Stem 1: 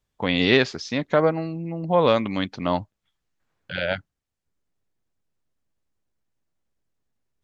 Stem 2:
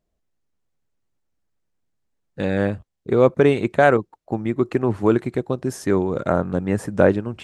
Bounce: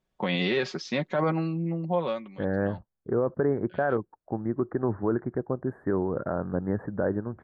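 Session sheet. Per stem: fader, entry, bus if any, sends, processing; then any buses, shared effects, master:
-1.0 dB, 0.00 s, no send, HPF 130 Hz 24 dB/oct; high shelf 5400 Hz -11 dB; comb 5.4 ms, depth 59%; auto duck -21 dB, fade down 0.65 s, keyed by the second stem
-5.0 dB, 0.00 s, no send, elliptic low-pass 1700 Hz, stop band 40 dB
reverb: off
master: limiter -16 dBFS, peak gain reduction 11 dB

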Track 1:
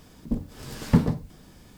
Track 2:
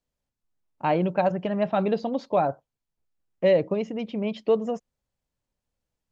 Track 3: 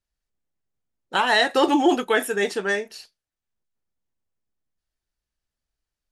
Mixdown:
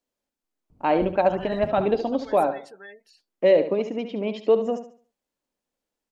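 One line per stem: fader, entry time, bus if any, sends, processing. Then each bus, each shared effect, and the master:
-16.0 dB, 0.70 s, no send, no echo send, Wiener smoothing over 25 samples; low shelf 310 Hz +12 dB; compressor, threshold -16 dBFS, peak gain reduction 12.5 dB
+1.0 dB, 0.00 s, no send, echo send -10 dB, resonant low shelf 180 Hz -13.5 dB, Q 1.5
-16.5 dB, 0.15 s, no send, no echo send, spectral gate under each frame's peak -20 dB strong; limiter -16.5 dBFS, peak gain reduction 9 dB; low shelf 420 Hz -7 dB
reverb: off
echo: feedback echo 71 ms, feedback 32%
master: dry

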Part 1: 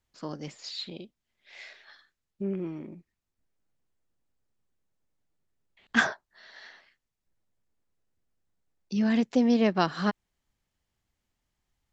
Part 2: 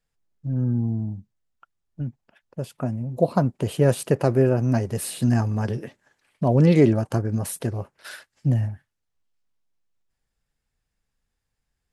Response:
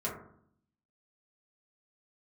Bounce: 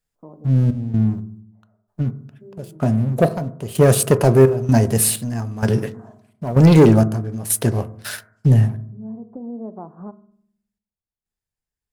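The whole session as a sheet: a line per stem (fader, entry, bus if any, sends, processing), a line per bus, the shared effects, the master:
-1.5 dB, 0.00 s, send -16 dB, gate -52 dBFS, range -17 dB; steep low-pass 1000 Hz 36 dB/oct; compressor 2.5:1, threshold -34 dBFS, peak gain reduction 10.5 dB; auto duck -14 dB, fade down 1.45 s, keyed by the second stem
8.62 s -0.5 dB -> 8.9 s -9 dB, 0.00 s, send -14 dB, sample leveller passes 2; step gate "xxx.xx.." 64 bpm -12 dB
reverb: on, RT60 0.65 s, pre-delay 4 ms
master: high shelf 7500 Hz +9.5 dB

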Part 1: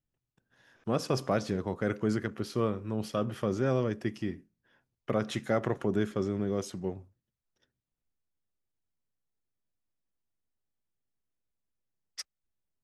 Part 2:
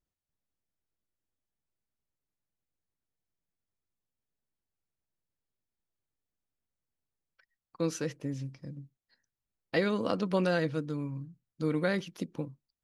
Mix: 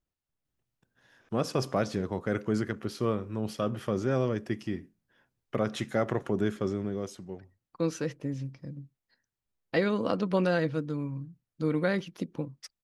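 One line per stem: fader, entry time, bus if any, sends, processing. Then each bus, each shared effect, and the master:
+0.5 dB, 0.45 s, no send, auto duck -8 dB, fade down 0.70 s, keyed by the second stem
+2.0 dB, 0.00 s, no send, high shelf 4100 Hz -6.5 dB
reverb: off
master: dry

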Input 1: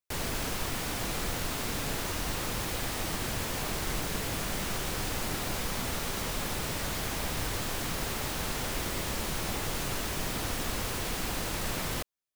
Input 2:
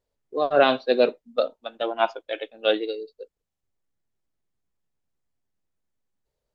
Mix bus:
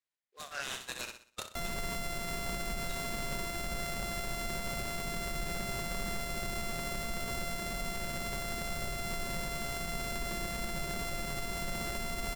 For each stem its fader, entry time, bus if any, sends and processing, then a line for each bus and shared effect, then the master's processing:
-2.5 dB, 1.45 s, no send, echo send -9.5 dB, sample sorter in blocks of 64 samples; comb 5.3 ms, depth 46%
-3.0 dB, 0.00 s, muted 1.7–2.89, no send, echo send -10.5 dB, Chebyshev band-pass 1800–4500 Hz, order 2; noise-modulated delay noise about 3300 Hz, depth 0.042 ms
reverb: off
echo: feedback echo 62 ms, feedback 39%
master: limiter -26 dBFS, peak gain reduction 11 dB

